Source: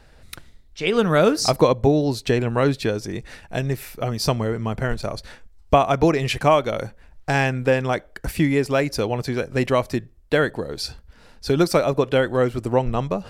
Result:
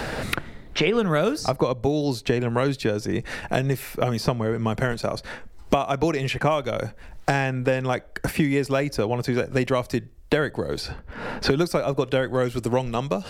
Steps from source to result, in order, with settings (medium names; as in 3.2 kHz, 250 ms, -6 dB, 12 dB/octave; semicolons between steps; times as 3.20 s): three bands compressed up and down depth 100%; trim -3.5 dB